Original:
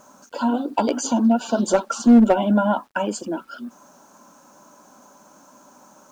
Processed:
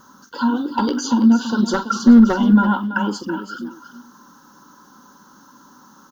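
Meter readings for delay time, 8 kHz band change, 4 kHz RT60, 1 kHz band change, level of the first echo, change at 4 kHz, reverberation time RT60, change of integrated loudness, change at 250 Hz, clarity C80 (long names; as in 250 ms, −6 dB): 44 ms, −2.0 dB, no reverb audible, +1.0 dB, −14.5 dB, +4.0 dB, no reverb audible, +3.0 dB, +4.0 dB, no reverb audible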